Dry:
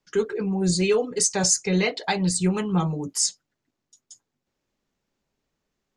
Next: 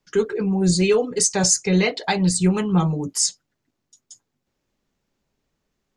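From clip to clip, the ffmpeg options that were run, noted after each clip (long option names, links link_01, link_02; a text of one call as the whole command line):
ffmpeg -i in.wav -af "lowshelf=frequency=200:gain=3.5,volume=2.5dB" out.wav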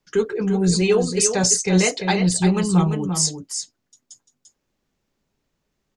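ffmpeg -i in.wav -af "aecho=1:1:344:0.422" out.wav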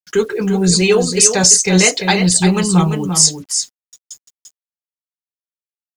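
ffmpeg -i in.wav -af "acrusher=bits=8:mix=0:aa=0.5,tiltshelf=frequency=1400:gain=-3,apsyclip=8.5dB,volume=-1.5dB" out.wav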